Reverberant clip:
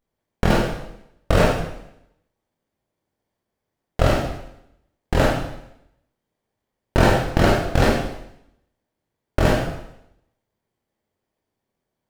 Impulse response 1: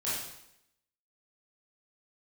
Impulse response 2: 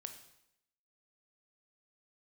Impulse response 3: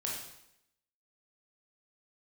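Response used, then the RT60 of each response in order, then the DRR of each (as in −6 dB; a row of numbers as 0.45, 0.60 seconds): 3; 0.80, 0.80, 0.80 seconds; −10.5, 6.5, −3.5 decibels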